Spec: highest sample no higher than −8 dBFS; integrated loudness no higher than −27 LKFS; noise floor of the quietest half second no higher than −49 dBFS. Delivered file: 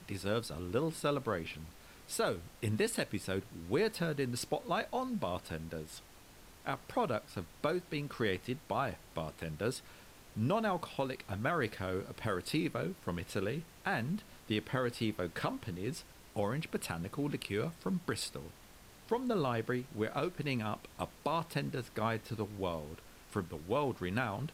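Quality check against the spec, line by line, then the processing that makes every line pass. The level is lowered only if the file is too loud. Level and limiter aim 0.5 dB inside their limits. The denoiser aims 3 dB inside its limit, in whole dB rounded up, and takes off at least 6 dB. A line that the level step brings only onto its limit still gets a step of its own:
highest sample −21.0 dBFS: in spec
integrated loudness −37.0 LKFS: in spec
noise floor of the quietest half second −57 dBFS: in spec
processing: no processing needed

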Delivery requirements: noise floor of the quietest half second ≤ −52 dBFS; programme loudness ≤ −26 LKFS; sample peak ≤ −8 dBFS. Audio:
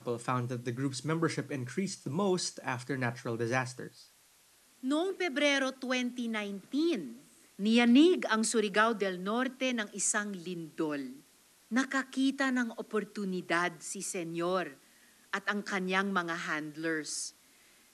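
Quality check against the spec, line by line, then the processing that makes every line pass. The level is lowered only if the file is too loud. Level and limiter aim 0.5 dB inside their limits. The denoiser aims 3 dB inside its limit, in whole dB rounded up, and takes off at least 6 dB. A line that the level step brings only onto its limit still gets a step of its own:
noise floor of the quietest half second −64 dBFS: in spec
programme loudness −32.0 LKFS: in spec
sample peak −13.5 dBFS: in spec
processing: no processing needed

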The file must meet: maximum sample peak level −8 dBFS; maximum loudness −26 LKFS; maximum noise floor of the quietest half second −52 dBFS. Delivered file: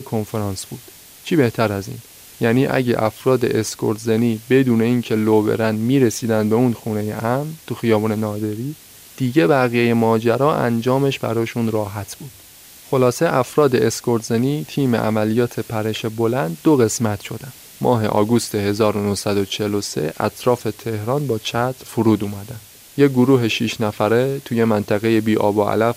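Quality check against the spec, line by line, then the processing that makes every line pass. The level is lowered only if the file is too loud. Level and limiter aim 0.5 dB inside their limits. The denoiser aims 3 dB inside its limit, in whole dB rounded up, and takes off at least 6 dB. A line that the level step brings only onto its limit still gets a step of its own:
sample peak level −3.0 dBFS: out of spec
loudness −18.5 LKFS: out of spec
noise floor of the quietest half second −43 dBFS: out of spec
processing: broadband denoise 6 dB, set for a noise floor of −43 dBFS
level −8 dB

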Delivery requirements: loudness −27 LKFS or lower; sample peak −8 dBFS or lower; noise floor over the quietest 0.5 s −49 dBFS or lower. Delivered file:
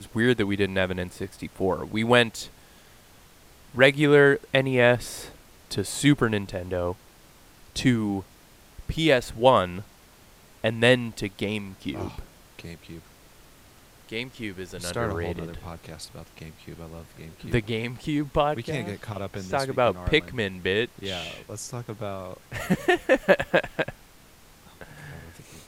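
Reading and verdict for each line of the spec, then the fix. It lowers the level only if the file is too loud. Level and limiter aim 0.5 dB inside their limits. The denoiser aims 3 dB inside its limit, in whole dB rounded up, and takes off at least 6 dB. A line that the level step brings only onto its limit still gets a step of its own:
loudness −25.0 LKFS: out of spec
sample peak −3.0 dBFS: out of spec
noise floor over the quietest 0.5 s −53 dBFS: in spec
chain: level −2.5 dB
brickwall limiter −8.5 dBFS

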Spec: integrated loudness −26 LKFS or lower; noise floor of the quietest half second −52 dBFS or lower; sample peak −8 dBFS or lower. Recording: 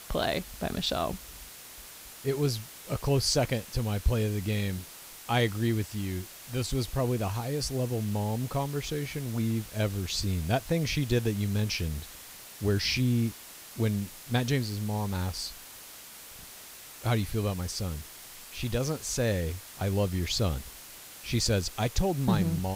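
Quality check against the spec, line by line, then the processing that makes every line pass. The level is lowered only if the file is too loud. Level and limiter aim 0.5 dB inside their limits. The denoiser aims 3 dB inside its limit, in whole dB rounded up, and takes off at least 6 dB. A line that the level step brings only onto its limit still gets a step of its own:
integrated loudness −30.0 LKFS: in spec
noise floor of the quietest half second −47 dBFS: out of spec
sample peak −13.0 dBFS: in spec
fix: broadband denoise 8 dB, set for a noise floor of −47 dBFS

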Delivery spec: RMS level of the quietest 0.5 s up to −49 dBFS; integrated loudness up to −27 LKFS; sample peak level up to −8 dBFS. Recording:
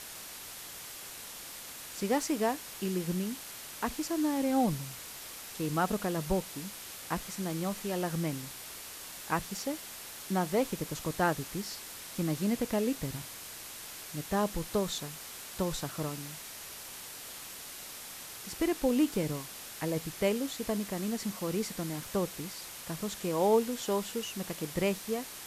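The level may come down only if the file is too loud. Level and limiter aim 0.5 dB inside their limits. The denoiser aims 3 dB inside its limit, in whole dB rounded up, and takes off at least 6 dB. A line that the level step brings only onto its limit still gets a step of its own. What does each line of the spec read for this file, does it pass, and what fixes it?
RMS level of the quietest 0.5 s −45 dBFS: out of spec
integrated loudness −34.0 LKFS: in spec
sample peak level −15.0 dBFS: in spec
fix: broadband denoise 7 dB, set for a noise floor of −45 dBFS

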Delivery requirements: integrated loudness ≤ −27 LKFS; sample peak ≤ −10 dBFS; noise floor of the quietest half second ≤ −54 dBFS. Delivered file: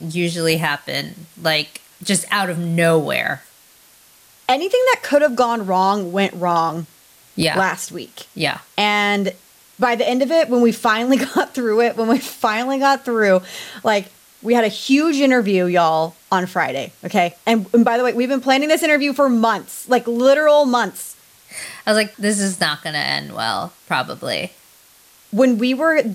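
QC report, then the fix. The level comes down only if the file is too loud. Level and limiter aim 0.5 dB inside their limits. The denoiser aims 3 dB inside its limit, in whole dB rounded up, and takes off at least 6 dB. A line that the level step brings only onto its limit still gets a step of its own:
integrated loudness −17.5 LKFS: out of spec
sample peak −4.0 dBFS: out of spec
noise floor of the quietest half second −50 dBFS: out of spec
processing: level −10 dB

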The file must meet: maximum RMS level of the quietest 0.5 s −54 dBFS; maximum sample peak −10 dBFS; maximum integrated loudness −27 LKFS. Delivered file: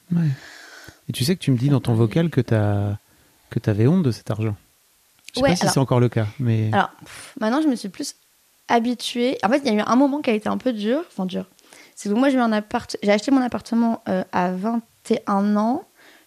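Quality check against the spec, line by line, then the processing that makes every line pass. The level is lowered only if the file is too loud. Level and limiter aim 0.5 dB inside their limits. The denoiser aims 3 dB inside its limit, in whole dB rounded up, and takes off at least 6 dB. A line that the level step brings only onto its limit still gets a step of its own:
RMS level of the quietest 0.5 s −60 dBFS: in spec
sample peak −5.0 dBFS: out of spec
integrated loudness −21.5 LKFS: out of spec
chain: level −6 dB

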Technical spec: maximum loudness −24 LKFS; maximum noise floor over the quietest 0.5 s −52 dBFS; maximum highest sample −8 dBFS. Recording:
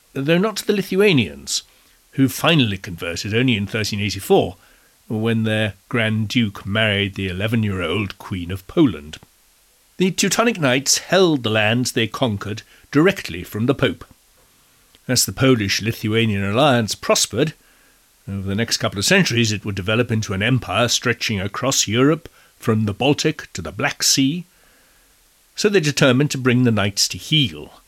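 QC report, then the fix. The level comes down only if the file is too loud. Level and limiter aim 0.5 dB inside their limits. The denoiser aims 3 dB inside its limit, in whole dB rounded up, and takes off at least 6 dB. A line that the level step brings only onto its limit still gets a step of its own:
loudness −18.5 LKFS: out of spec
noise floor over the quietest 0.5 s −56 dBFS: in spec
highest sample −4.5 dBFS: out of spec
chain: level −6 dB

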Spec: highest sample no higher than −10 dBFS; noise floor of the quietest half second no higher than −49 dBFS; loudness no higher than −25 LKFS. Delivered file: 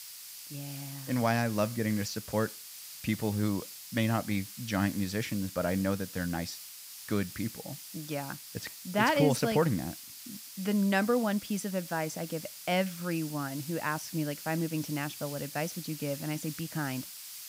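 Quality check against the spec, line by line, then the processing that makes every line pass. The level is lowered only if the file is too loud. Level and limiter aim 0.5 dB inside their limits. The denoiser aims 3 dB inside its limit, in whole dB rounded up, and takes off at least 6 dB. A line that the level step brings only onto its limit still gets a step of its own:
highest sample −12.5 dBFS: in spec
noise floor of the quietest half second −47 dBFS: out of spec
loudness −32.0 LKFS: in spec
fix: broadband denoise 6 dB, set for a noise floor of −47 dBFS

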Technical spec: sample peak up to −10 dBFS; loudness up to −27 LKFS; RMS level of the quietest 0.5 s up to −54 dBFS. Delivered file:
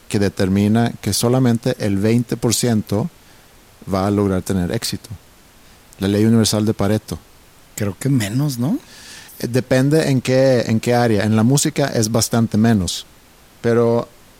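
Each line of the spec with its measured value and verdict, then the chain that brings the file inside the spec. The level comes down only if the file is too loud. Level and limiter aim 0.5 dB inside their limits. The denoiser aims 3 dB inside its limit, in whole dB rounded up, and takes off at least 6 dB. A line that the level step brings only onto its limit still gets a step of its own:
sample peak −4.5 dBFS: out of spec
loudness −17.5 LKFS: out of spec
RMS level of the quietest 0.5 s −47 dBFS: out of spec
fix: level −10 dB

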